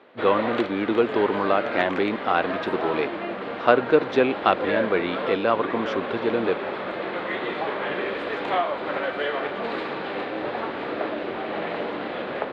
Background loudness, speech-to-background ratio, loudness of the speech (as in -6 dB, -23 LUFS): -29.0 LUFS, 5.0 dB, -24.0 LUFS